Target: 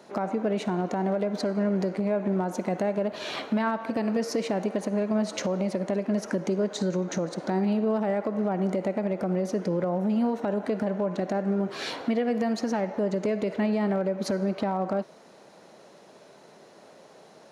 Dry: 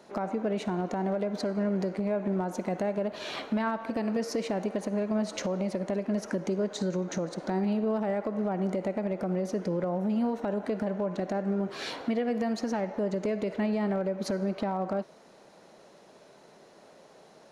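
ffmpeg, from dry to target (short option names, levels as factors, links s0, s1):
-af "highpass=76,volume=1.41"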